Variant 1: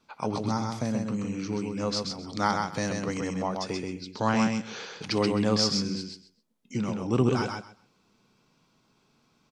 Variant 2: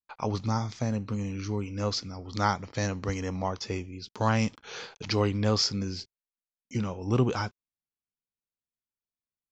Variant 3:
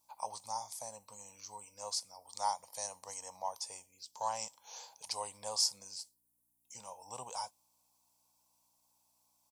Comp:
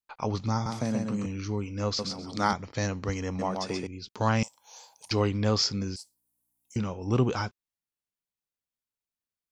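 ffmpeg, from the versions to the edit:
-filter_complex "[0:a]asplit=3[s0][s1][s2];[2:a]asplit=2[s3][s4];[1:a]asplit=6[s5][s6][s7][s8][s9][s10];[s5]atrim=end=0.662[s11];[s0]atrim=start=0.658:end=1.262[s12];[s6]atrim=start=1.258:end=1.992[s13];[s1]atrim=start=1.988:end=2.532[s14];[s7]atrim=start=2.528:end=3.392[s15];[s2]atrim=start=3.388:end=3.872[s16];[s8]atrim=start=3.868:end=4.432[s17];[s3]atrim=start=4.428:end=5.112[s18];[s9]atrim=start=5.108:end=5.962[s19];[s4]atrim=start=5.958:end=6.762[s20];[s10]atrim=start=6.758[s21];[s11][s12]acrossfade=d=0.004:c1=hsin:c2=hsin[s22];[s22][s13]acrossfade=d=0.004:c1=hsin:c2=hsin[s23];[s23][s14]acrossfade=d=0.004:c1=hsin:c2=hsin[s24];[s24][s15]acrossfade=d=0.004:c1=hsin:c2=hsin[s25];[s25][s16]acrossfade=d=0.004:c1=hsin:c2=hsin[s26];[s26][s17]acrossfade=d=0.004:c1=hsin:c2=hsin[s27];[s27][s18]acrossfade=d=0.004:c1=hsin:c2=hsin[s28];[s28][s19]acrossfade=d=0.004:c1=hsin:c2=hsin[s29];[s29][s20]acrossfade=d=0.004:c1=hsin:c2=hsin[s30];[s30][s21]acrossfade=d=0.004:c1=hsin:c2=hsin"

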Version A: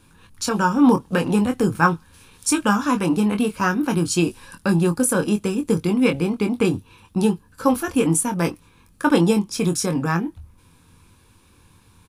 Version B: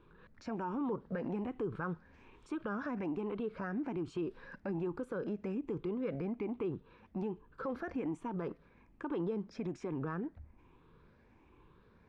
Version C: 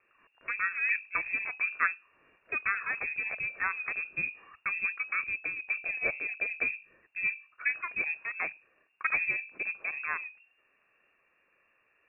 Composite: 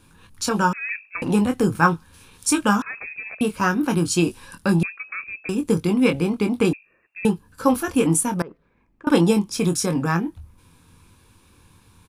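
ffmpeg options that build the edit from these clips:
-filter_complex "[2:a]asplit=4[s0][s1][s2][s3];[0:a]asplit=6[s4][s5][s6][s7][s8][s9];[s4]atrim=end=0.732[s10];[s0]atrim=start=0.728:end=1.222[s11];[s5]atrim=start=1.218:end=2.822[s12];[s1]atrim=start=2.818:end=3.412[s13];[s6]atrim=start=3.408:end=4.832[s14];[s2]atrim=start=4.828:end=5.492[s15];[s7]atrim=start=5.488:end=6.732[s16];[s3]atrim=start=6.728:end=7.252[s17];[s8]atrim=start=7.248:end=8.422[s18];[1:a]atrim=start=8.418:end=9.072[s19];[s9]atrim=start=9.068[s20];[s10][s11]acrossfade=d=0.004:c1=hsin:c2=hsin[s21];[s21][s12]acrossfade=d=0.004:c1=hsin:c2=hsin[s22];[s22][s13]acrossfade=d=0.004:c1=hsin:c2=hsin[s23];[s23][s14]acrossfade=d=0.004:c1=hsin:c2=hsin[s24];[s24][s15]acrossfade=d=0.004:c1=hsin:c2=hsin[s25];[s25][s16]acrossfade=d=0.004:c1=hsin:c2=hsin[s26];[s26][s17]acrossfade=d=0.004:c1=hsin:c2=hsin[s27];[s27][s18]acrossfade=d=0.004:c1=hsin:c2=hsin[s28];[s28][s19]acrossfade=d=0.004:c1=hsin:c2=hsin[s29];[s29][s20]acrossfade=d=0.004:c1=hsin:c2=hsin"

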